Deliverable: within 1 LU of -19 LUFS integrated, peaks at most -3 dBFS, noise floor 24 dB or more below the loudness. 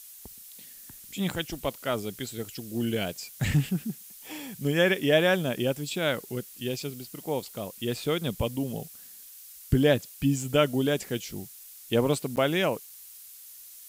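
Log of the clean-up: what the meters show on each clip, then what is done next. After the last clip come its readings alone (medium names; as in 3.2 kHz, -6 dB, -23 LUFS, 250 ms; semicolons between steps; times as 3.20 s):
dropouts 1; longest dropout 9.2 ms; noise floor -48 dBFS; noise floor target -53 dBFS; loudness -28.5 LUFS; peak level -10.0 dBFS; loudness target -19.0 LUFS
-> interpolate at 12.36 s, 9.2 ms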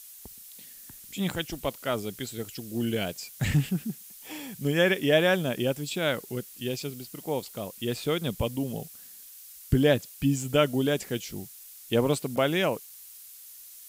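dropouts 0; noise floor -48 dBFS; noise floor target -53 dBFS
-> noise reduction 6 dB, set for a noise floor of -48 dBFS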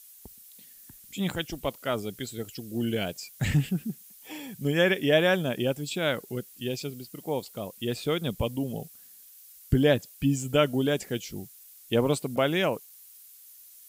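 noise floor -52 dBFS; noise floor target -53 dBFS
-> noise reduction 6 dB, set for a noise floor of -52 dBFS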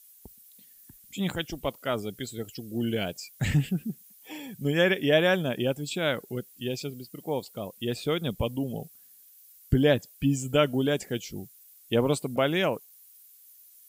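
noise floor -55 dBFS; loudness -28.0 LUFS; peak level -9.5 dBFS; loudness target -19.0 LUFS
-> trim +9 dB; peak limiter -3 dBFS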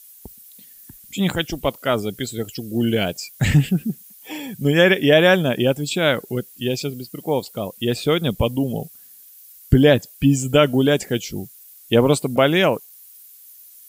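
loudness -19.5 LUFS; peak level -3.0 dBFS; noise floor -46 dBFS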